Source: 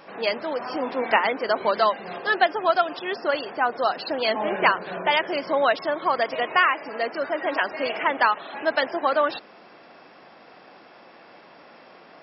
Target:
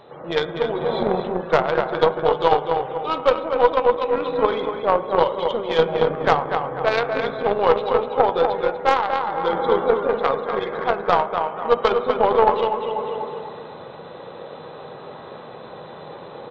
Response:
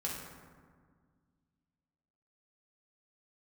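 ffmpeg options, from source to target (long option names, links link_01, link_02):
-filter_complex "[0:a]lowshelf=frequency=470:gain=8.5,asplit=2[link_01][link_02];[link_02]adelay=181,lowpass=frequency=4400:poles=1,volume=-4dB,asplit=2[link_03][link_04];[link_04]adelay=181,lowpass=frequency=4400:poles=1,volume=0.45,asplit=2[link_05][link_06];[link_06]adelay=181,lowpass=frequency=4400:poles=1,volume=0.45,asplit=2[link_07][link_08];[link_08]adelay=181,lowpass=frequency=4400:poles=1,volume=0.45,asplit=2[link_09][link_10];[link_10]adelay=181,lowpass=frequency=4400:poles=1,volume=0.45,asplit=2[link_11][link_12];[link_12]adelay=181,lowpass=frequency=4400:poles=1,volume=0.45[link_13];[link_01][link_03][link_05][link_07][link_09][link_11][link_13]amix=inputs=7:normalize=0,tremolo=f=120:d=0.261,asetrate=32667,aresample=44100,asplit=2[link_14][link_15];[1:a]atrim=start_sample=2205,asetrate=43218,aresample=44100[link_16];[link_15][link_16]afir=irnorm=-1:irlink=0,volume=-6dB[link_17];[link_14][link_17]amix=inputs=2:normalize=0,aeval=exprs='1.06*(cos(1*acos(clip(val(0)/1.06,-1,1)))-cos(1*PI/2))+0.473*(cos(2*acos(clip(val(0)/1.06,-1,1)))-cos(2*PI/2))+0.0266*(cos(6*acos(clip(val(0)/1.06,-1,1)))-cos(6*PI/2))+0.0596*(cos(7*acos(clip(val(0)/1.06,-1,1)))-cos(7*PI/2))+0.0335*(cos(8*acos(clip(val(0)/1.06,-1,1)))-cos(8*PI/2))':channel_layout=same,equalizer=frequency=250:width_type=o:width=1:gain=-7,equalizer=frequency=500:width_type=o:width=1:gain=5,equalizer=frequency=1000:width_type=o:width=1:gain=5,equalizer=frequency=2000:width_type=o:width=1:gain=-4,equalizer=frequency=4000:width_type=o:width=1:gain=7,dynaudnorm=framelen=120:gausssize=5:maxgain=7.5dB,volume=-1dB"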